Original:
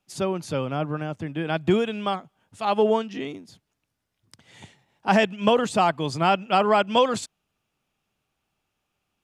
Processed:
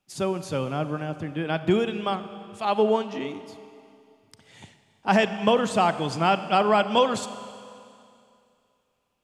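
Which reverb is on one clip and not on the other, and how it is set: Schroeder reverb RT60 2.5 s, combs from 30 ms, DRR 11.5 dB; gain -1 dB

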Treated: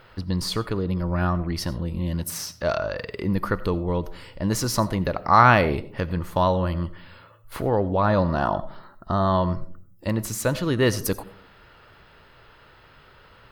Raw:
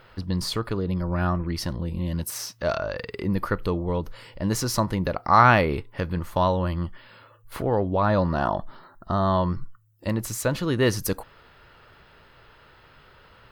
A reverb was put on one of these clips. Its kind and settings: digital reverb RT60 0.52 s, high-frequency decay 0.3×, pre-delay 45 ms, DRR 16.5 dB; gain +1 dB

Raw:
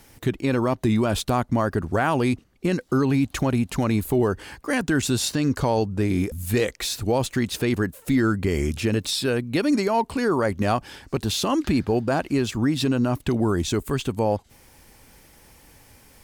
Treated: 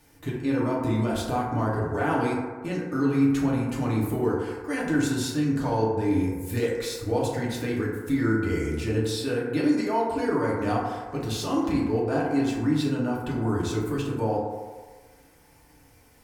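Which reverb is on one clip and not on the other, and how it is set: FDN reverb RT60 1.5 s, low-frequency decay 0.7×, high-frequency decay 0.3×, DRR -6 dB; gain -11 dB

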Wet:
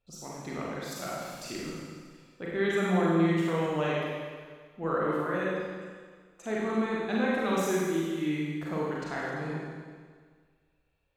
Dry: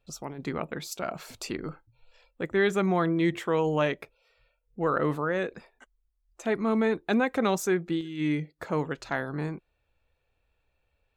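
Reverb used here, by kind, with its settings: Schroeder reverb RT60 1.7 s, combs from 33 ms, DRR -5.5 dB; gain -8 dB

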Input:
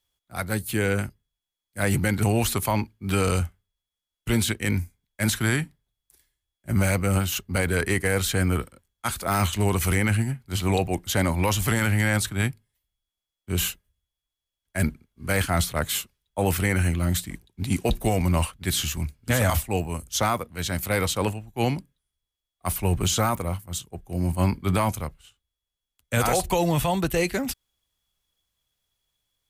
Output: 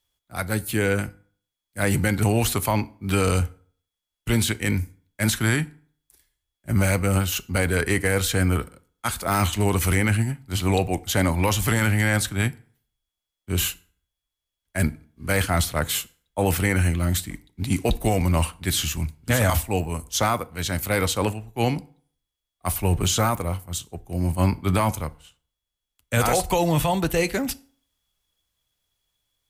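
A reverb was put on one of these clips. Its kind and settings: FDN reverb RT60 0.5 s, low-frequency decay 0.95×, high-frequency decay 0.7×, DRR 15.5 dB; gain +1.5 dB

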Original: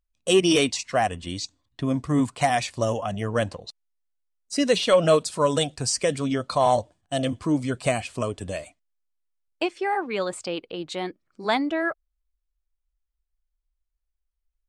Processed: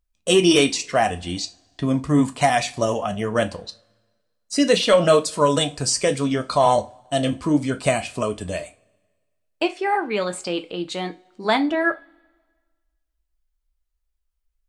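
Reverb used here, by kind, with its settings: two-slope reverb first 0.23 s, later 1.5 s, from -27 dB, DRR 6.5 dB; gain +3 dB

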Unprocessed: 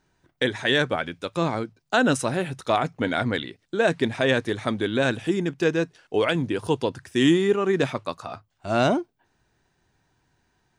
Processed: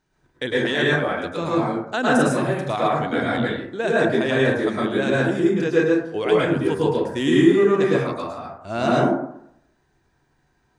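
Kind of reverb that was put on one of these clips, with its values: plate-style reverb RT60 0.73 s, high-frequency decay 0.35×, pre-delay 95 ms, DRR -6 dB; gain -4.5 dB

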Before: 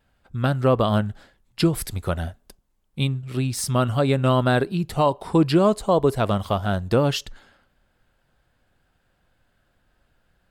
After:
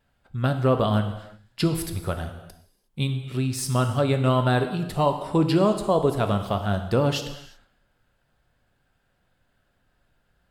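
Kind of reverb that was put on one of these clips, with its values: non-linear reverb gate 0.39 s falling, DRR 6.5 dB; gain -3 dB

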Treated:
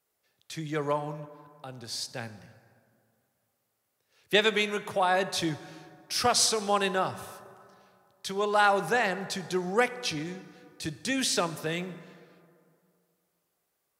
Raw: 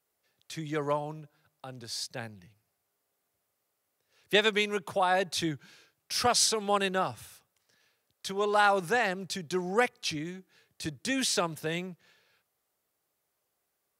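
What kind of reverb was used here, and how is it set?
plate-style reverb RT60 2.3 s, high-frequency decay 0.5×, DRR 12.5 dB; gain +1 dB

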